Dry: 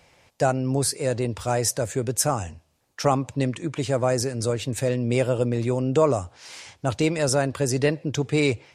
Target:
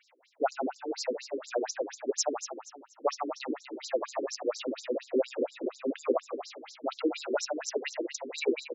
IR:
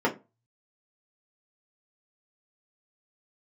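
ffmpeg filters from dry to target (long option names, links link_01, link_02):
-filter_complex "[0:a]asplit=9[link_01][link_02][link_03][link_04][link_05][link_06][link_07][link_08][link_09];[link_02]adelay=120,afreqshift=32,volume=-5dB[link_10];[link_03]adelay=240,afreqshift=64,volume=-9.9dB[link_11];[link_04]adelay=360,afreqshift=96,volume=-14.8dB[link_12];[link_05]adelay=480,afreqshift=128,volume=-19.6dB[link_13];[link_06]adelay=600,afreqshift=160,volume=-24.5dB[link_14];[link_07]adelay=720,afreqshift=192,volume=-29.4dB[link_15];[link_08]adelay=840,afreqshift=224,volume=-34.3dB[link_16];[link_09]adelay=960,afreqshift=256,volume=-39.2dB[link_17];[link_01][link_10][link_11][link_12][link_13][link_14][link_15][link_16][link_17]amix=inputs=9:normalize=0,afftfilt=real='re*between(b*sr/1024,320*pow(5500/320,0.5+0.5*sin(2*PI*4.2*pts/sr))/1.41,320*pow(5500/320,0.5+0.5*sin(2*PI*4.2*pts/sr))*1.41)':imag='im*between(b*sr/1024,320*pow(5500/320,0.5+0.5*sin(2*PI*4.2*pts/sr))/1.41,320*pow(5500/320,0.5+0.5*sin(2*PI*4.2*pts/sr))*1.41)':win_size=1024:overlap=0.75,volume=-2dB"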